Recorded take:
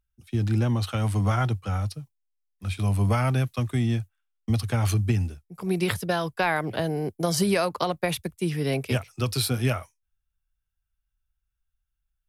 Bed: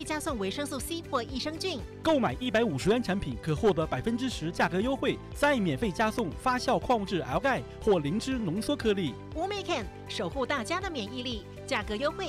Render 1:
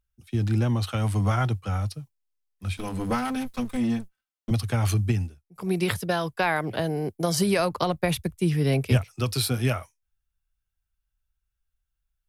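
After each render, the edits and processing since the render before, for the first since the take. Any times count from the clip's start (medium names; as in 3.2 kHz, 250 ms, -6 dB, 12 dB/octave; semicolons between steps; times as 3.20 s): 2.77–4.51 s: comb filter that takes the minimum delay 3.9 ms; 5.08–5.56 s: upward expansion, over -39 dBFS; 7.59–9.05 s: bass shelf 130 Hz +12 dB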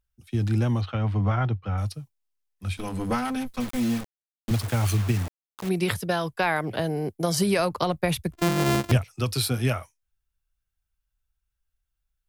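0.81–1.78 s: distance through air 260 m; 3.60–5.69 s: word length cut 6-bit, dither none; 8.33–8.92 s: sorted samples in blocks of 128 samples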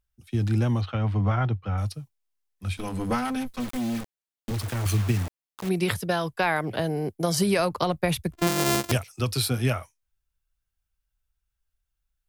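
3.57–4.86 s: overload inside the chain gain 25.5 dB; 8.47–9.20 s: tone controls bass -6 dB, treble +7 dB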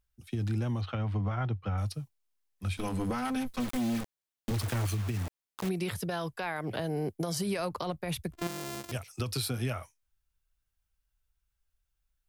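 compression, threshold -28 dBFS, peak gain reduction 10 dB; peak limiter -23 dBFS, peak gain reduction 11.5 dB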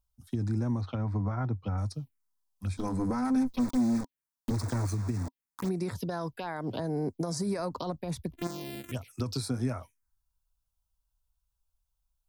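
touch-sensitive phaser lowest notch 330 Hz, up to 3 kHz, full sweep at -29.5 dBFS; small resonant body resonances 260/960 Hz, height 7 dB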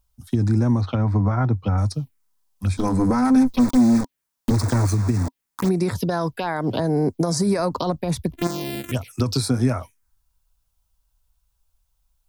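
trim +11 dB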